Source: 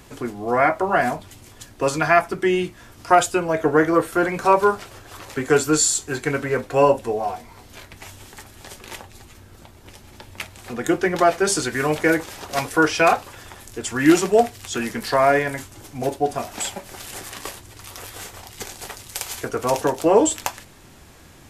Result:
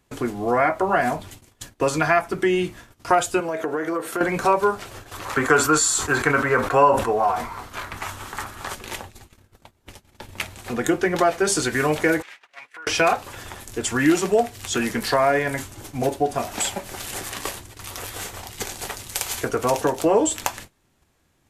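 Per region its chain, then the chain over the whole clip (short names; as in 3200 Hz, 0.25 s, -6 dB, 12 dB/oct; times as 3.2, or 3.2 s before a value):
3.4–4.21 HPF 220 Hz + compressor, threshold -25 dBFS
5.25–8.75 bell 1200 Hz +13.5 dB 1.1 oct + sustainer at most 110 dB/s
12.22–12.87 compressor 10:1, threshold -28 dBFS + band-pass 2100 Hz, Q 2.2
whole clip: compressor 2:1, threshold -23 dBFS; bell 5100 Hz -2 dB 0.23 oct; gate -42 dBFS, range -22 dB; gain +3.5 dB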